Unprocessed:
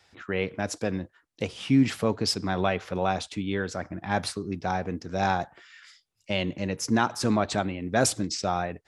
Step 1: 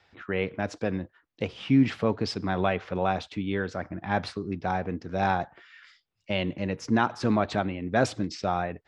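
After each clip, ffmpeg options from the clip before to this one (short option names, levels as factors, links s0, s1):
-af "lowpass=3500"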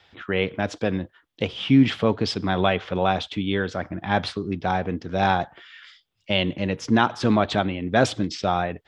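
-af "equalizer=f=3300:w=3.6:g=9,volume=1.68"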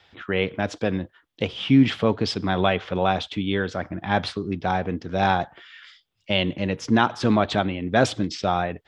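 -af anull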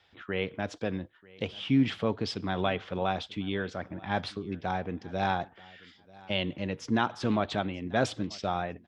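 -af "aecho=1:1:938|1876:0.0708|0.0149,volume=0.398"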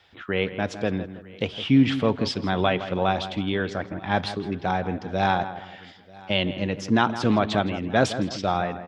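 -filter_complex "[0:a]asplit=2[s0][s1];[s1]adelay=163,lowpass=f=2300:p=1,volume=0.266,asplit=2[s2][s3];[s3]adelay=163,lowpass=f=2300:p=1,volume=0.38,asplit=2[s4][s5];[s5]adelay=163,lowpass=f=2300:p=1,volume=0.38,asplit=2[s6][s7];[s7]adelay=163,lowpass=f=2300:p=1,volume=0.38[s8];[s0][s2][s4][s6][s8]amix=inputs=5:normalize=0,volume=2.11"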